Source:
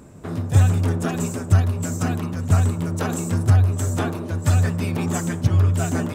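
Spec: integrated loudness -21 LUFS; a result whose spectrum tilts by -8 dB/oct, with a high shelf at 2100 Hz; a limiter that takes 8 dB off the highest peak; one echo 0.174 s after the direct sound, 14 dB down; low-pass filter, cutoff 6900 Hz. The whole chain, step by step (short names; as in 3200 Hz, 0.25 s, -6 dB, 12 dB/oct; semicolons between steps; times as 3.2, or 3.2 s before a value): LPF 6900 Hz; high shelf 2100 Hz -5.5 dB; limiter -13 dBFS; echo 0.174 s -14 dB; gain +2 dB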